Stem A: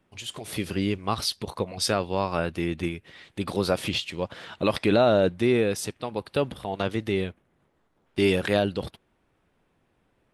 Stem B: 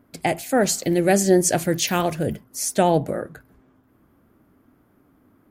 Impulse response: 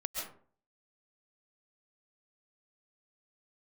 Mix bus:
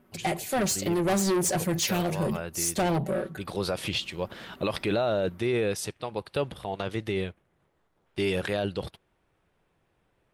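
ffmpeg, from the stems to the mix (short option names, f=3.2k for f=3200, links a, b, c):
-filter_complex "[0:a]equalizer=f=250:w=3.3:g=-7,volume=-1.5dB[a];[1:a]aecho=1:1:5.3:0.81,dynaudnorm=f=360:g=5:m=11dB,asoftclip=type=tanh:threshold=-18dB,volume=-4dB,asplit=2[b][c];[c]apad=whole_len=455571[d];[a][d]sidechaincompress=threshold=-33dB:ratio=8:attack=16:release=704[e];[e][b]amix=inputs=2:normalize=0,alimiter=limit=-17dB:level=0:latency=1:release=22"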